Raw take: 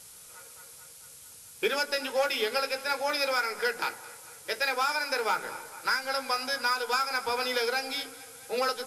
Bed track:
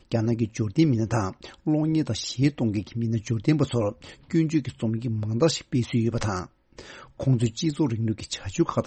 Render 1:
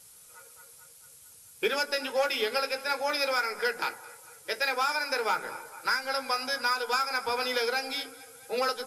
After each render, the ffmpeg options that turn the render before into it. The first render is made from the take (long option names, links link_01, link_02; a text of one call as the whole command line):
ffmpeg -i in.wav -af "afftdn=noise_reduction=6:noise_floor=-50" out.wav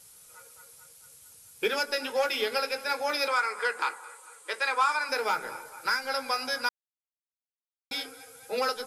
ffmpeg -i in.wav -filter_complex "[0:a]asettb=1/sr,asplit=3[link_01][link_02][link_03];[link_01]atrim=end=3.284[link_04];[link_02]atrim=start=3.28:end=5.09,asetpts=PTS-STARTPTS,afade=type=in:duration=0.004:curve=qsin,afade=type=out:start_time=1.806:duration=0.004:curve=qsin,highpass=390,equalizer=frequency=650:width_type=q:width=4:gain=-6,equalizer=frequency=1100:width_type=q:width=4:gain=10,equalizer=frequency=5400:width_type=q:width=4:gain=-9,equalizer=frequency=8500:width_type=q:width=4:gain=7,lowpass=frequency=9800:width=0.5412,lowpass=frequency=9800:width=1.3066[link_05];[link_03]atrim=start=5.086[link_06];[link_04][link_05]acrossfade=duration=0.004:curve1=hsin:curve2=qsin[link_07];[link_07][link_06]acrossfade=duration=0.004:curve1=qsin:curve2=hsin,asplit=3[link_08][link_09][link_10];[link_08]atrim=end=6.69,asetpts=PTS-STARTPTS,afade=type=out:start_time=6.686:duration=0.004:curve=hsin[link_11];[link_09]atrim=start=6.69:end=7.91,asetpts=PTS-STARTPTS,volume=0[link_12];[link_10]atrim=start=7.91,asetpts=PTS-STARTPTS,afade=type=in:duration=0.004:curve=hsin[link_13];[link_11][link_12][link_13]concat=n=3:v=0:a=1" out.wav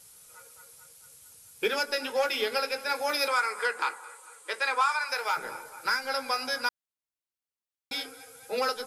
ffmpeg -i in.wav -filter_complex "[0:a]asettb=1/sr,asplit=3[link_01][link_02][link_03];[link_01]atrim=end=2.954[link_04];[link_02]atrim=start=2.95:end=3.66,asetpts=PTS-STARTPTS,afade=type=in:duration=0.004:curve=qsin,afade=type=out:start_time=0.706:duration=0.004:curve=qsin,highshelf=frequency=9900:gain=9[link_05];[link_03]atrim=start=3.656[link_06];[link_04][link_05]acrossfade=duration=0.004:curve1=hsin:curve2=qsin[link_07];[link_07][link_06]acrossfade=duration=0.004:curve1=qsin:curve2=hsin,asettb=1/sr,asplit=3[link_08][link_09][link_10];[link_08]atrim=end=4.814[link_11];[link_09]atrim=start=4.81:end=5.37,asetpts=PTS-STARTPTS,afade=type=in:duration=0.004:curve=qsin,afade=type=out:start_time=0.556:duration=0.004:curve=qsin,highpass=680[link_12];[link_10]atrim=start=5.366[link_13];[link_11][link_12]acrossfade=duration=0.004:curve1=hsin:curve2=qsin[link_14];[link_14][link_13]acrossfade=duration=0.004:curve1=qsin:curve2=hsin" out.wav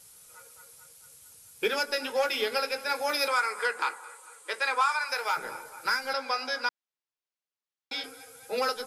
ffmpeg -i in.wav -filter_complex "[0:a]asettb=1/sr,asplit=3[link_01][link_02][link_03];[link_01]atrim=end=6.134[link_04];[link_02]atrim=start=6.13:end=8.04,asetpts=PTS-STARTPTS,afade=type=in:duration=0.004:curve=qsin,afade=type=out:start_time=1.906:duration=0.004:curve=qsin,acrossover=split=220 6700:gain=0.2 1 0.178[link_05][link_06][link_07];[link_05][link_06][link_07]amix=inputs=3:normalize=0[link_08];[link_03]atrim=start=8.036[link_09];[link_04][link_08]acrossfade=duration=0.004:curve1=hsin:curve2=qsin[link_10];[link_10][link_09]acrossfade=duration=0.004:curve1=qsin:curve2=hsin" out.wav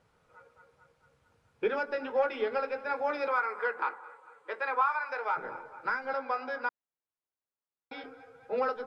ffmpeg -i in.wav -af "lowpass=1400" out.wav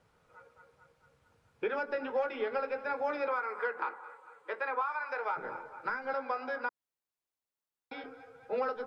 ffmpeg -i in.wav -filter_complex "[0:a]acrossover=split=540|2900[link_01][link_02][link_03];[link_01]acompressor=threshold=-35dB:ratio=4[link_04];[link_02]acompressor=threshold=-32dB:ratio=4[link_05];[link_03]acompressor=threshold=-57dB:ratio=4[link_06];[link_04][link_05][link_06]amix=inputs=3:normalize=0" out.wav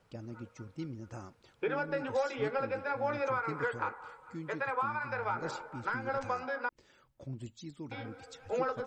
ffmpeg -i in.wav -i bed.wav -filter_complex "[1:a]volume=-20.5dB[link_01];[0:a][link_01]amix=inputs=2:normalize=0" out.wav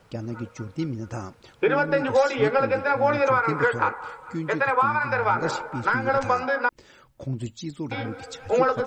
ffmpeg -i in.wav -af "volume=12dB" out.wav